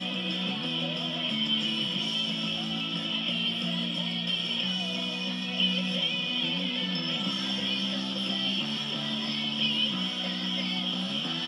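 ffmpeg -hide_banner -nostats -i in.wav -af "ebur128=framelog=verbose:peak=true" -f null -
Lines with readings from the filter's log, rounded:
Integrated loudness:
  I:         -27.9 LUFS
  Threshold: -37.9 LUFS
Loudness range:
  LRA:         0.7 LU
  Threshold: -47.9 LUFS
  LRA low:   -28.2 LUFS
  LRA high:  -27.5 LUFS
True peak:
  Peak:      -14.2 dBFS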